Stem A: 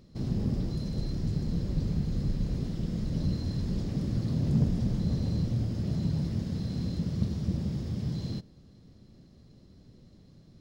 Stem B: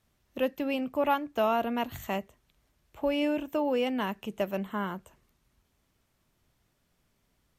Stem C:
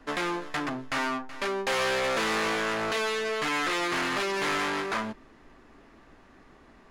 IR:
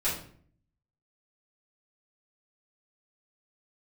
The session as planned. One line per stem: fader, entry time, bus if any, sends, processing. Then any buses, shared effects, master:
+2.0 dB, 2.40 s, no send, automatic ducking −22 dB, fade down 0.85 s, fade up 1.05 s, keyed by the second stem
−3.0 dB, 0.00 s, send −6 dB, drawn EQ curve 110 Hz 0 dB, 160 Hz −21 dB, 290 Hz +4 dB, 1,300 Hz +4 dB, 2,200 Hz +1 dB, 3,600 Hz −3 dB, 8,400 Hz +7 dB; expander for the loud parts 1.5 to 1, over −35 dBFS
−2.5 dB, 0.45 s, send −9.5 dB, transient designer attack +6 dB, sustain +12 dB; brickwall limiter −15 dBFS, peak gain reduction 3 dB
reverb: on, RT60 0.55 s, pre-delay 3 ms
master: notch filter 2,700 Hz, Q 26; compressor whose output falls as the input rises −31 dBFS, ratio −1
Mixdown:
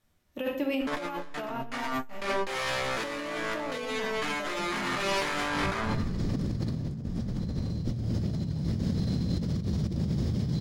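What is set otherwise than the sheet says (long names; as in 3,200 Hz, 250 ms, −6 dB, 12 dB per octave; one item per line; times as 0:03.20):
stem B: missing drawn EQ curve 110 Hz 0 dB, 160 Hz −21 dB, 290 Hz +4 dB, 1,300 Hz +4 dB, 2,200 Hz +1 dB, 3,600 Hz −3 dB, 8,400 Hz +7 dB
stem C: entry 0.45 s → 0.80 s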